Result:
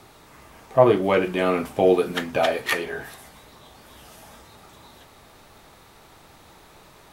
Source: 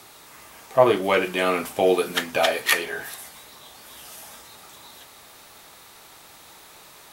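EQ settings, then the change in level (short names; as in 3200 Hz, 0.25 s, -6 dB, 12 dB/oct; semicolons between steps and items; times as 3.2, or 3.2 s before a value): tilt -2.5 dB/oct; -1.0 dB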